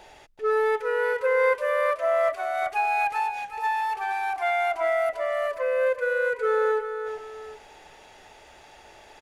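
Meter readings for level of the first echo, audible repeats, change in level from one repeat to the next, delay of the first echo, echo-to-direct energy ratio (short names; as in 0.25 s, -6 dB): -9.0 dB, 2, -8.0 dB, 0.376 s, -8.5 dB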